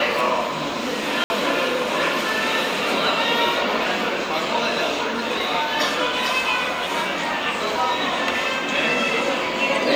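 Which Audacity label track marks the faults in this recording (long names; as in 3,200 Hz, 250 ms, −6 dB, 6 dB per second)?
1.240000	1.300000	drop-out 60 ms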